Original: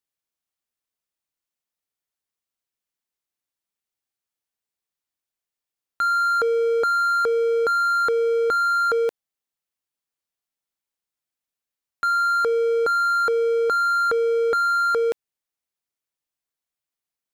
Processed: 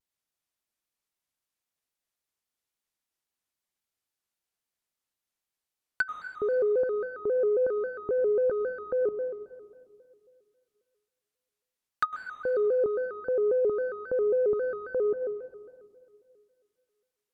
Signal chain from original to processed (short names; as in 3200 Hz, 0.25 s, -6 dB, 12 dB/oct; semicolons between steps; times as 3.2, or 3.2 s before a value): treble ducked by the level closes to 350 Hz, closed at -19 dBFS; on a send at -7 dB: reverb RT60 2.2 s, pre-delay 92 ms; on the sum: shaped vibrato square 3.7 Hz, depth 160 cents